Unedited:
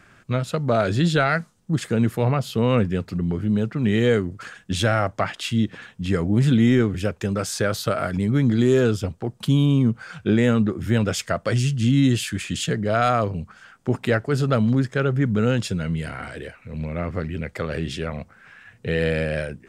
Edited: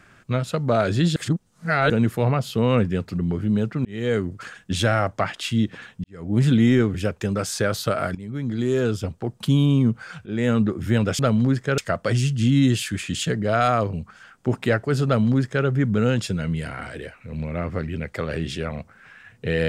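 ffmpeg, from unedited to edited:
ffmpeg -i in.wav -filter_complex "[0:a]asplit=9[link_01][link_02][link_03][link_04][link_05][link_06][link_07][link_08][link_09];[link_01]atrim=end=1.162[link_10];[link_02]atrim=start=1.158:end=1.902,asetpts=PTS-STARTPTS,areverse[link_11];[link_03]atrim=start=1.898:end=3.85,asetpts=PTS-STARTPTS,afade=type=out:start_time=1.948:duration=0.004:curve=hsin[link_12];[link_04]atrim=start=3.85:end=6.04,asetpts=PTS-STARTPTS,afade=type=in:duration=0.4,afade=type=out:start_time=2.186:duration=0.004:curve=hsin[link_13];[link_05]atrim=start=6.04:end=8.15,asetpts=PTS-STARTPTS,afade=type=in:duration=0.34:curve=qua,afade=type=out:start_time=2.106:duration=0.004:curve=hsin:silence=0.158489[link_14];[link_06]atrim=start=8.15:end=10.26,asetpts=PTS-STARTPTS,afade=type=in:duration=1.08:silence=0.158489,afade=type=out:start_time=2.106:duration=0.004:curve=hsin:silence=0.0668344[link_15];[link_07]atrim=start=10.26:end=11.192,asetpts=PTS-STARTPTS,afade=type=in:duration=0.39:curve=qsin:silence=0.0668344[link_16];[link_08]atrim=start=14.468:end=15.062[link_17];[link_09]atrim=start=11.188[link_18];[link_10][link_11]acrossfade=duration=0.004:curve1=hsin:curve2=hsin[link_19];[link_12][link_13][link_14][link_15][link_16]concat=n=5:v=0:a=1[link_20];[link_19][link_20]acrossfade=duration=0.004:curve1=hsin:curve2=hsin[link_21];[link_21][link_17]acrossfade=duration=0.004:curve1=hsin:curve2=hsin[link_22];[link_22][link_18]acrossfade=duration=0.004:curve1=hsin:curve2=hsin" out.wav

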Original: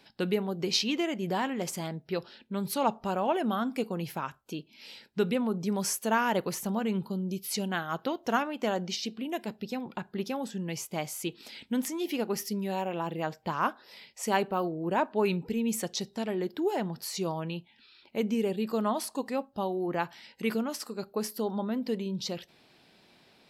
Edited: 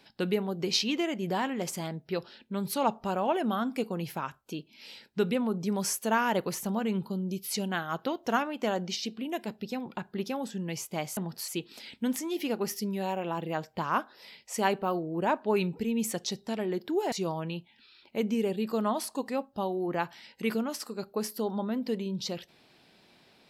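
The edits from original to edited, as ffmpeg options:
ffmpeg -i in.wav -filter_complex "[0:a]asplit=4[link_01][link_02][link_03][link_04];[link_01]atrim=end=11.172[link_05];[link_02]atrim=start=16.808:end=17.122[link_06];[link_03]atrim=start=11.168:end=16.812[link_07];[link_04]atrim=start=17.118[link_08];[link_05][link_06]acrossfade=duration=0.004:curve1=hsin:curve2=hsin[link_09];[link_09][link_07]acrossfade=duration=0.004:curve1=hsin:curve2=hsin[link_10];[link_10][link_08]acrossfade=duration=0.004:curve1=hsin:curve2=hsin" out.wav

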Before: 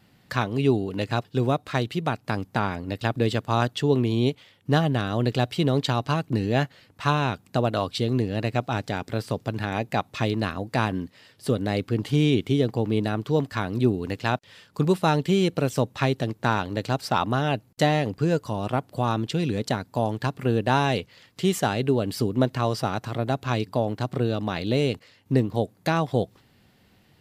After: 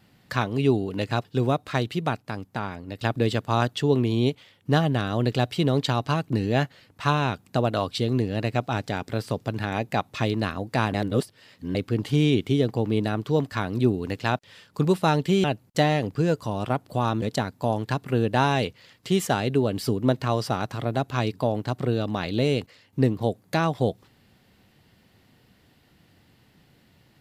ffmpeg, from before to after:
ffmpeg -i in.wav -filter_complex "[0:a]asplit=7[link_01][link_02][link_03][link_04][link_05][link_06][link_07];[link_01]atrim=end=2.222[link_08];[link_02]atrim=start=2.218:end=2.982,asetpts=PTS-STARTPTS,volume=-5.5dB[link_09];[link_03]atrim=start=2.978:end=10.942[link_10];[link_04]atrim=start=10.938:end=11.752,asetpts=PTS-STARTPTS,areverse[link_11];[link_05]atrim=start=11.748:end=15.442[link_12];[link_06]atrim=start=17.468:end=19.252[link_13];[link_07]atrim=start=19.548[link_14];[link_08][link_09]acrossfade=duration=0.004:curve1=hsin:curve2=hsin[link_15];[link_15][link_10]acrossfade=duration=0.004:curve1=hsin:curve2=hsin[link_16];[link_16][link_11]acrossfade=duration=0.004:curve1=hsin:curve2=hsin[link_17];[link_17][link_12]acrossfade=duration=0.004:curve1=hsin:curve2=hsin[link_18];[link_18][link_13]acrossfade=duration=0.004:curve1=hsin:curve2=hsin[link_19];[link_19][link_14]acrossfade=duration=0.004:curve1=hsin:curve2=hsin" out.wav

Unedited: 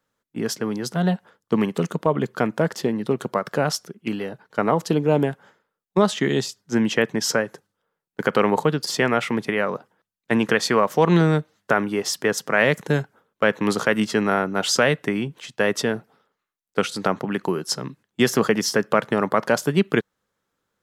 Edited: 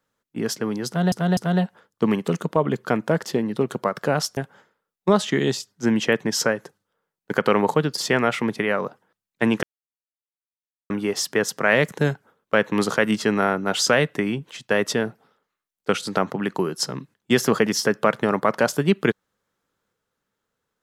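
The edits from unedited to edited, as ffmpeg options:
ffmpeg -i in.wav -filter_complex "[0:a]asplit=6[link_01][link_02][link_03][link_04][link_05][link_06];[link_01]atrim=end=1.122[link_07];[link_02]atrim=start=0.868:end=1.122[link_08];[link_03]atrim=start=0.868:end=3.872[link_09];[link_04]atrim=start=5.258:end=10.52,asetpts=PTS-STARTPTS,afade=type=out:start_time=5.258:duration=0.004:curve=hsin[link_10];[link_05]atrim=start=10.52:end=11.79,asetpts=PTS-STARTPTS,volume=0[link_11];[link_06]atrim=start=11.79,asetpts=PTS-STARTPTS,afade=type=in:duration=0.004:curve=hsin[link_12];[link_07][link_08]acrossfade=duration=0.004:curve1=hsin:curve2=hsin[link_13];[link_13][link_09]acrossfade=duration=0.004:curve1=hsin:curve2=hsin[link_14];[link_10][link_11][link_12]concat=n=3:v=0:a=1[link_15];[link_14][link_15]acrossfade=duration=0.004:curve1=hsin:curve2=hsin" out.wav

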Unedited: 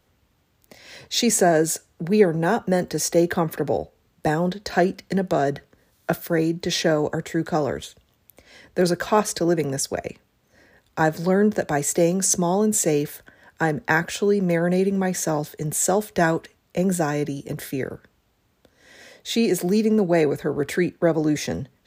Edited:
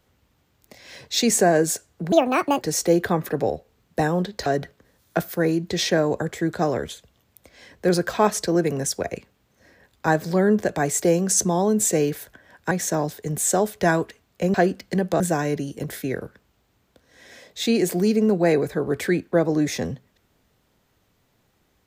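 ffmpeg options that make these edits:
ffmpeg -i in.wav -filter_complex "[0:a]asplit=7[link_01][link_02][link_03][link_04][link_05][link_06][link_07];[link_01]atrim=end=2.124[link_08];[link_02]atrim=start=2.12:end=2.88,asetpts=PTS-STARTPTS,asetrate=68355,aresample=44100,atrim=end_sample=21623,asetpts=PTS-STARTPTS[link_09];[link_03]atrim=start=2.876:end=4.732[link_10];[link_04]atrim=start=5.388:end=13.642[link_11];[link_05]atrim=start=15.058:end=16.892[link_12];[link_06]atrim=start=4.728:end=5.392[link_13];[link_07]atrim=start=16.888[link_14];[link_08][link_09]acrossfade=duration=0.004:curve1=hsin:curve2=hsin[link_15];[link_15][link_10]acrossfade=duration=0.004:curve1=hsin:curve2=hsin[link_16];[link_16][link_11]acrossfade=duration=0.004:curve1=hsin:curve2=hsin[link_17];[link_17][link_12]acrossfade=duration=0.004:curve1=hsin:curve2=hsin[link_18];[link_18][link_13]acrossfade=duration=0.004:curve1=hsin:curve2=hsin[link_19];[link_19][link_14]acrossfade=duration=0.004:curve1=hsin:curve2=hsin" out.wav

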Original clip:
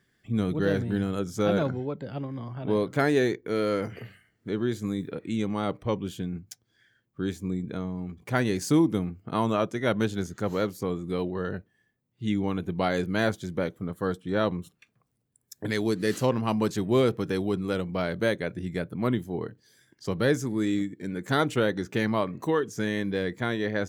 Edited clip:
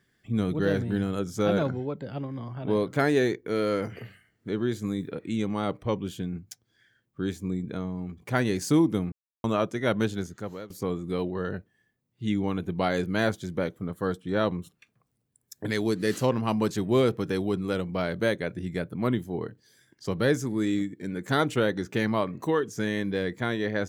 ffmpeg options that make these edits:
ffmpeg -i in.wav -filter_complex "[0:a]asplit=4[link_01][link_02][link_03][link_04];[link_01]atrim=end=9.12,asetpts=PTS-STARTPTS,afade=type=out:start_time=9.116:duration=0.004:curve=hsin[link_05];[link_02]atrim=start=9.12:end=9.44,asetpts=PTS-STARTPTS,volume=0[link_06];[link_03]atrim=start=9.44:end=10.7,asetpts=PTS-STARTPTS,afade=type=in:duration=0.004:curve=hsin,afade=type=out:start_time=0.65:duration=0.61:silence=0.1[link_07];[link_04]atrim=start=10.7,asetpts=PTS-STARTPTS,afade=type=in:duration=0.004:curve=hsin:silence=0.1[link_08];[link_05][link_06][link_07][link_08]concat=n=4:v=0:a=1" out.wav

